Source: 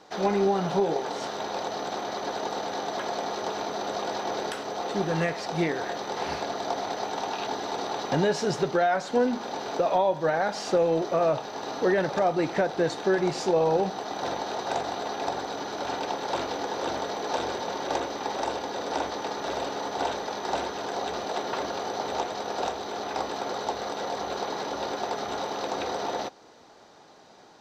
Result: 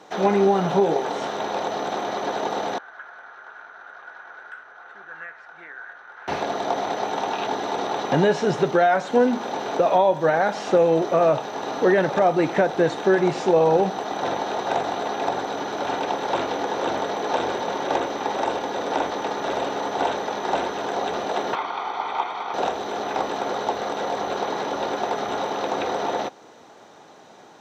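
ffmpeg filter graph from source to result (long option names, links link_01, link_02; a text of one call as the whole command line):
ffmpeg -i in.wav -filter_complex "[0:a]asettb=1/sr,asplit=3[link_01][link_02][link_03];[link_01]atrim=end=2.784[link_04];[link_02]atrim=start=2.78:end=6.28,asetpts=PTS-STARTPTS,afade=type=in:duration=0.004:curve=qsin,afade=type=out:start_time=3.496:duration=0.004:curve=qsin,bandpass=frequency=1500:width_type=q:width=9.2,aeval=exprs='val(0)+0.000112*(sin(2*PI*50*n/s)+sin(2*PI*2*50*n/s)/2+sin(2*PI*3*50*n/s)/3+sin(2*PI*4*50*n/s)/4+sin(2*PI*5*50*n/s)/5)':channel_layout=same[link_05];[link_03]atrim=start=6.276[link_06];[link_04][link_05]acrossfade=duration=0.004:curve1=hsin:curve2=qsin[link_07];[link_07][link_06]acrossfade=duration=0.004:curve1=qsin:curve2=hsin,asettb=1/sr,asplit=3[link_08][link_09][link_10];[link_08]atrim=end=21.554[link_11];[link_09]atrim=start=21.55:end=22.54,asetpts=PTS-STARTPTS,afade=type=in:duration=0.004:curve=qsin,afade=type=out:start_time=0.986:duration=0.004:curve=qsin,acrossover=split=480 4300:gain=0.126 1 0.0794[link_12][link_13][link_14];[link_12][link_13][link_14]amix=inputs=3:normalize=0,aecho=1:1:0.9:0.66,atrim=end_sample=43659,acrossover=split=4500[link_15][link_16];[link_16]acompressor=threshold=-57dB:ratio=4:attack=1:release=60[link_17];[link_15][link_17]amix=inputs=2:normalize=0[link_18];[link_10]atrim=start=22.536[link_19];[link_11][link_18]acrossfade=duration=0.004:curve1=hsin:curve2=qsin[link_20];[link_20][link_19]acrossfade=duration=0.004:curve1=qsin:curve2=hsin,highpass=99,acrossover=split=5100[link_21][link_22];[link_22]acompressor=threshold=-52dB:ratio=4:attack=1:release=60[link_23];[link_21][link_23]amix=inputs=2:normalize=0,equalizer=frequency=4700:width_type=o:width=0.31:gain=-9.5,volume=5.5dB" out.wav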